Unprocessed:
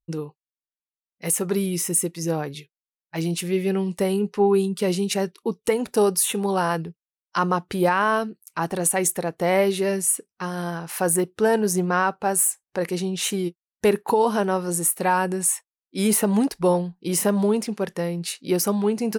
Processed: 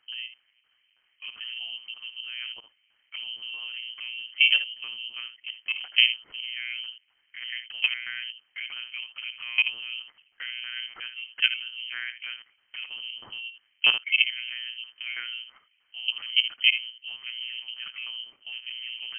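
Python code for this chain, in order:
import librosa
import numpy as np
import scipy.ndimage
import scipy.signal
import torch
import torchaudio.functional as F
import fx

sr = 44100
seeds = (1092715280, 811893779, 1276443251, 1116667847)

y = fx.highpass(x, sr, hz=57.0, slope=6)
y = fx.peak_eq(y, sr, hz=510.0, db=-2.5, octaves=1.4)
y = fx.level_steps(y, sr, step_db=19)
y = fx.dmg_noise_colour(y, sr, seeds[0], colour='pink', level_db=-70.0)
y = fx.filter_lfo_lowpass(y, sr, shape='saw_down', hz=3.1, low_hz=680.0, high_hz=1900.0, q=1.8)
y = y + 10.0 ** (-10.5 / 20.0) * np.pad(y, (int(71 * sr / 1000.0), 0))[:len(y)]
y = fx.lpc_monotone(y, sr, seeds[1], pitch_hz=120.0, order=8)
y = fx.freq_invert(y, sr, carrier_hz=3100)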